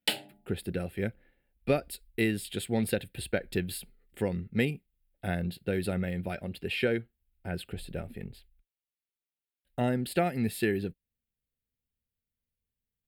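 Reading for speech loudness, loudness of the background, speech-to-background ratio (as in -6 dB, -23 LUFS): -32.5 LUFS, -34.0 LUFS, 1.5 dB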